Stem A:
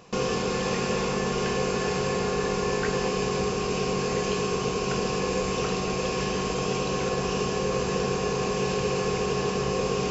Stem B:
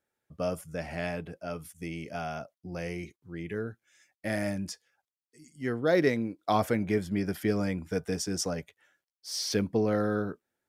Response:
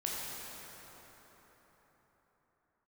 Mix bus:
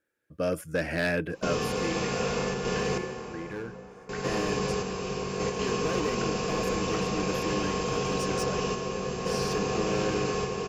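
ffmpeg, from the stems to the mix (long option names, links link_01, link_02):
-filter_complex "[0:a]adelay=1300,volume=-6dB,asplit=3[link_01][link_02][link_03];[link_01]atrim=end=2.98,asetpts=PTS-STARTPTS,afade=type=out:start_time=2.976:duration=0.004:curve=hsin[link_04];[link_02]atrim=start=2.98:end=4.09,asetpts=PTS-STARTPTS,volume=0[link_05];[link_03]atrim=start=4.09,asetpts=PTS-STARTPTS,afade=type=in:duration=0.004:curve=hsin[link_06];[link_04][link_05][link_06]concat=n=3:v=0:a=1,asplit=2[link_07][link_08];[link_08]volume=-6dB[link_09];[1:a]dynaudnorm=framelen=160:gausssize=7:maxgain=6.5dB,equalizer=frequency=315:width_type=o:width=0.33:gain=10,equalizer=frequency=500:width_type=o:width=0.33:gain=7,equalizer=frequency=800:width_type=o:width=0.33:gain=-8,equalizer=frequency=1600:width_type=o:width=0.33:gain=10,equalizer=frequency=2500:width_type=o:width=0.33:gain=4,asoftclip=type=hard:threshold=-19dB,volume=-1.5dB,afade=type=out:start_time=1.38:duration=0.69:silence=0.281838,asplit=2[link_10][link_11];[link_11]apad=whole_len=503158[link_12];[link_07][link_12]sidechaingate=range=-9dB:threshold=-55dB:ratio=16:detection=peak[link_13];[2:a]atrim=start_sample=2205[link_14];[link_09][link_14]afir=irnorm=-1:irlink=0[link_15];[link_13][link_10][link_15]amix=inputs=3:normalize=0"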